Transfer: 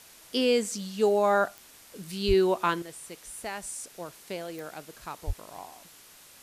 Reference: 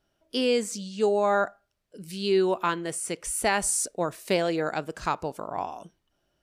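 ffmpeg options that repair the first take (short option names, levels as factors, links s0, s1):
-filter_complex "[0:a]adeclick=t=4,asplit=3[s0][s1][s2];[s0]afade=t=out:st=2.27:d=0.02[s3];[s1]highpass=f=140:w=0.5412,highpass=f=140:w=1.3066,afade=t=in:st=2.27:d=0.02,afade=t=out:st=2.39:d=0.02[s4];[s2]afade=t=in:st=2.39:d=0.02[s5];[s3][s4][s5]amix=inputs=3:normalize=0,asplit=3[s6][s7][s8];[s6]afade=t=out:st=5.26:d=0.02[s9];[s7]highpass=f=140:w=0.5412,highpass=f=140:w=1.3066,afade=t=in:st=5.26:d=0.02,afade=t=out:st=5.38:d=0.02[s10];[s8]afade=t=in:st=5.38:d=0.02[s11];[s9][s10][s11]amix=inputs=3:normalize=0,afwtdn=0.0028,asetnsamples=n=441:p=0,asendcmd='2.82 volume volume 12dB',volume=1"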